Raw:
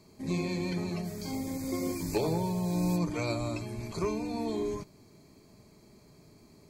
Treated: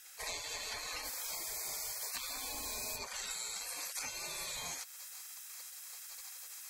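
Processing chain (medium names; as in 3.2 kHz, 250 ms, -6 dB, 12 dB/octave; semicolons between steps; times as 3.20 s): spectral gate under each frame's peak -25 dB weak; treble shelf 5.5 kHz +4.5 dB, from 3.31 s +11.5 dB; compression 6:1, threshold -54 dBFS, peak gain reduction 15 dB; trim +15 dB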